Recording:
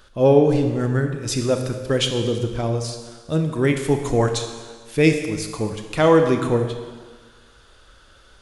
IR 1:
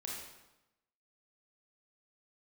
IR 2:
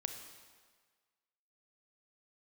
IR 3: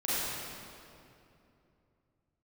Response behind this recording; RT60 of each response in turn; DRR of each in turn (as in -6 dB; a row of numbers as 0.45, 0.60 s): 2; 0.95, 1.6, 2.8 s; -3.5, 5.5, -11.0 dB